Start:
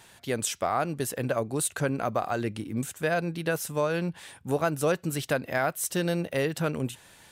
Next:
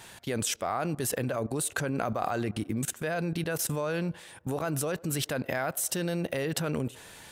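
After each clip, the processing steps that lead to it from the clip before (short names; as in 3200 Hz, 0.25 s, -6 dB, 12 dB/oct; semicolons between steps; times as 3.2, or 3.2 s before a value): level quantiser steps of 19 dB; band-limited delay 0.102 s, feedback 54%, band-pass 650 Hz, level -22 dB; gain +8 dB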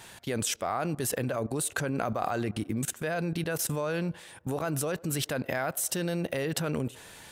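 nothing audible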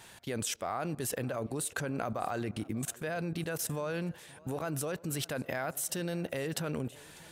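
warbling echo 0.594 s, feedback 45%, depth 133 cents, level -23 dB; gain -4.5 dB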